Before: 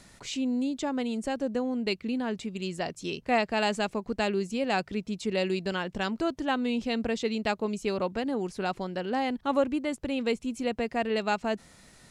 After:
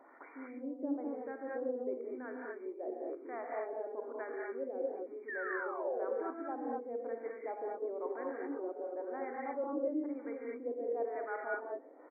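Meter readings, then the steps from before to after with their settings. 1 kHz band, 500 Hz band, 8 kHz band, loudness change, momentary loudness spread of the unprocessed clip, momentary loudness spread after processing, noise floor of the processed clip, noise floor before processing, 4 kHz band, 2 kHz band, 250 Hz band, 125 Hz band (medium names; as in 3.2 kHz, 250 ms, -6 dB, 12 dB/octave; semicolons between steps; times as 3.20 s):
-10.5 dB, -6.5 dB, under -35 dB, -9.5 dB, 6 LU, 6 LU, -54 dBFS, -56 dBFS, under -40 dB, -10.5 dB, -12.5 dB, under -35 dB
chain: dynamic bell 940 Hz, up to -4 dB, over -42 dBFS, Q 1.4; reverse; compression 6:1, threshold -40 dBFS, peak gain reduction 18 dB; reverse; overload inside the chain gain 32 dB; painted sound fall, 5.28–6.06 s, 390–1900 Hz -42 dBFS; LFO low-pass sine 1 Hz 480–1500 Hz; brick-wall FIR band-pass 250–2400 Hz; on a send: delay 131 ms -22.5 dB; on the sum: gated-style reverb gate 260 ms rising, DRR -2.5 dB; trim -2 dB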